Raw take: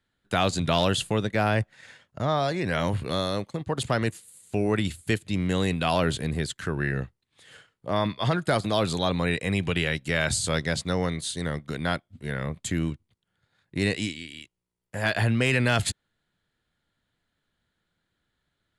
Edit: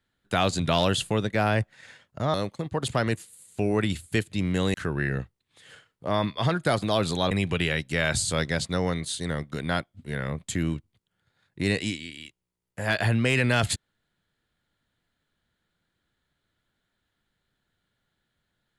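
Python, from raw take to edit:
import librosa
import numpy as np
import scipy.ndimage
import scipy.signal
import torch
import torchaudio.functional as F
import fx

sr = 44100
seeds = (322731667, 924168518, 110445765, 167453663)

y = fx.edit(x, sr, fx.cut(start_s=2.34, length_s=0.95),
    fx.cut(start_s=5.69, length_s=0.87),
    fx.cut(start_s=9.13, length_s=0.34), tone=tone)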